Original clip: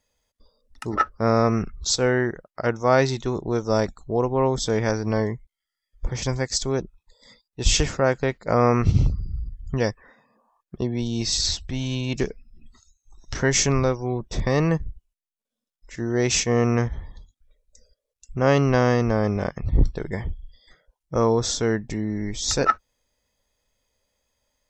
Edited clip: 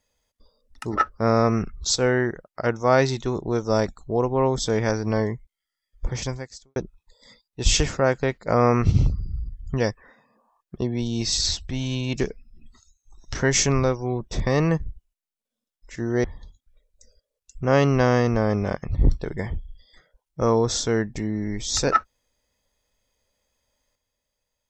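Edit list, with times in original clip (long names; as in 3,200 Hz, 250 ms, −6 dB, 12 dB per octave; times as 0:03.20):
0:06.18–0:06.76: fade out quadratic
0:16.24–0:16.98: remove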